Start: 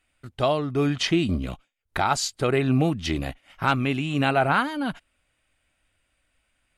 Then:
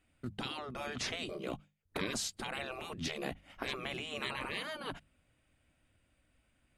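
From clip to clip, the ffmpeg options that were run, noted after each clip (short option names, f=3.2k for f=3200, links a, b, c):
-af "afftfilt=real='re*lt(hypot(re,im),0.1)':imag='im*lt(hypot(re,im),0.1)':win_size=1024:overlap=0.75,equalizer=f=150:w=0.33:g=13,bandreject=f=50:t=h:w=6,bandreject=f=100:t=h:w=6,bandreject=f=150:t=h:w=6,bandreject=f=200:t=h:w=6,volume=-6dB"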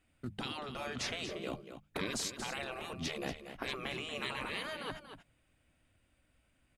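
-filter_complex "[0:a]asplit=2[a][b];[b]asoftclip=type=tanh:threshold=-33dB,volume=-12dB[c];[a][c]amix=inputs=2:normalize=0,aecho=1:1:235:0.316,volume=-2dB"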